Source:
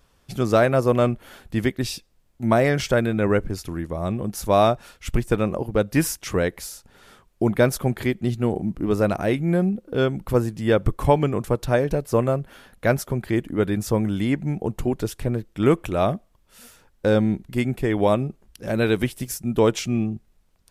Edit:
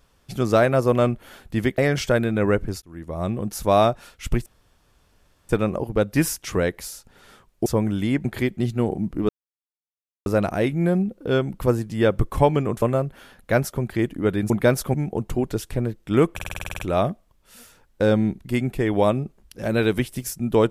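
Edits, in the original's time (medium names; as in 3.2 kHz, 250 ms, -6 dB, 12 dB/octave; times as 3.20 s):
1.78–2.60 s: delete
3.64–4.04 s: fade in
5.28 s: insert room tone 1.03 s
7.45–7.89 s: swap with 13.84–14.43 s
8.93 s: insert silence 0.97 s
11.49–12.16 s: delete
15.83 s: stutter 0.05 s, 10 plays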